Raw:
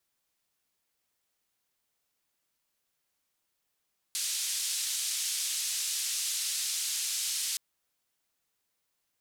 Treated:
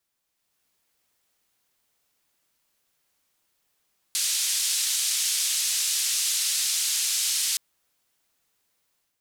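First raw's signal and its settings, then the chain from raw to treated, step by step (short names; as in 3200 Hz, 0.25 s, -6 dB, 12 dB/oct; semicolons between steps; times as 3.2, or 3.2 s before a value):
noise band 3700–9000 Hz, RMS -32.5 dBFS 3.42 s
AGC gain up to 7 dB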